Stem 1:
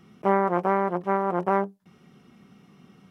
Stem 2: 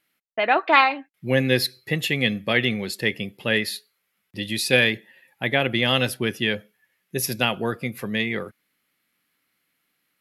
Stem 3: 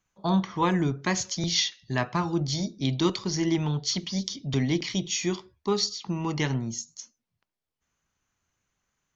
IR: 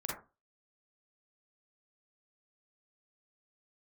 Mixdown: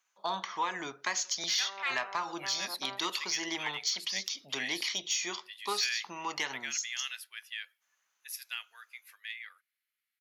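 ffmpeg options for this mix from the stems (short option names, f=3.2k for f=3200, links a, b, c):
-filter_complex "[0:a]adelay=1350,volume=-8.5dB[a];[1:a]highpass=f=1.4k:w=0.5412,highpass=f=1.4k:w=1.3066,adelay=1100,volume=-14.5dB[b];[2:a]volume=2.5dB,asplit=2[c][d];[d]apad=whole_len=196381[e];[a][e]sidechaincompress=threshold=-24dB:ratio=8:attack=10:release=1190[f];[f][c]amix=inputs=2:normalize=0,highpass=880,acompressor=threshold=-28dB:ratio=4,volume=0dB[g];[b][g]amix=inputs=2:normalize=0,asoftclip=type=tanh:threshold=-19dB"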